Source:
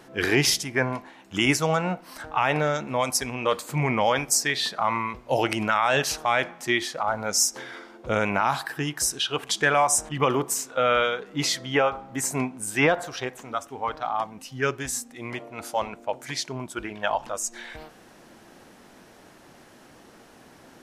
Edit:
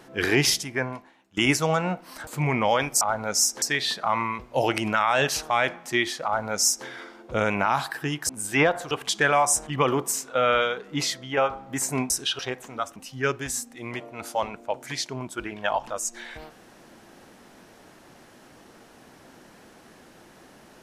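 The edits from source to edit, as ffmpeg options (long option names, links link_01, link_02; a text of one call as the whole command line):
ffmpeg -i in.wav -filter_complex "[0:a]asplit=11[link_01][link_02][link_03][link_04][link_05][link_06][link_07][link_08][link_09][link_10][link_11];[link_01]atrim=end=1.37,asetpts=PTS-STARTPTS,afade=type=out:start_time=0.49:duration=0.88:silence=0.0841395[link_12];[link_02]atrim=start=1.37:end=2.272,asetpts=PTS-STARTPTS,afade=type=in:duration=0.004:curve=hsin:silence=0.0841395[link_13];[link_03]atrim=start=3.628:end=4.372[link_14];[link_04]atrim=start=6.998:end=7.612[link_15];[link_05]atrim=start=4.368:end=9.042[link_16];[link_06]atrim=start=12.518:end=13.142[link_17];[link_07]atrim=start=9.328:end=11.79,asetpts=PTS-STARTPTS,afade=type=out:start_time=2.002:duration=0.46:silence=0.446684[link_18];[link_08]atrim=start=11.79:end=12.522,asetpts=PTS-STARTPTS,afade=type=in:duration=0.004:curve=hsin:silence=0.446684[link_19];[link_09]atrim=start=9.038:end=9.332[link_20];[link_10]atrim=start=13.138:end=13.712[link_21];[link_11]atrim=start=14.348[link_22];[link_12][link_13]concat=n=2:v=0:a=1[link_23];[link_23][link_14]acrossfade=duration=0.004:curve1=hsin:curve2=hsin[link_24];[link_24][link_15]acrossfade=duration=0.004:curve1=hsin:curve2=hsin[link_25];[link_25][link_16]acrossfade=duration=0.004:curve1=hsin:curve2=hsin[link_26];[link_26][link_17]acrossfade=duration=0.004:curve1=hsin:curve2=hsin[link_27];[link_18][link_19]concat=n=2:v=0:a=1[link_28];[link_27][link_28]acrossfade=duration=0.004:curve1=hsin:curve2=hsin[link_29];[link_29][link_20]acrossfade=duration=0.004:curve1=hsin:curve2=hsin[link_30];[link_30][link_21]acrossfade=duration=0.004:curve1=hsin:curve2=hsin[link_31];[link_31][link_22]acrossfade=duration=0.004:curve1=hsin:curve2=hsin" out.wav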